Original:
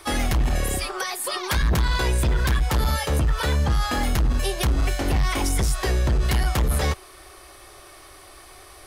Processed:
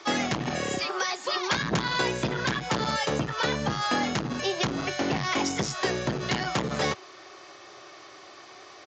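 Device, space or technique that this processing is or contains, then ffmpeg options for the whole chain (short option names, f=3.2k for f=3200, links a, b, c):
Bluetooth headset: -af "highpass=f=140:w=0.5412,highpass=f=140:w=1.3066,aresample=16000,aresample=44100" -ar 16000 -c:a sbc -b:a 64k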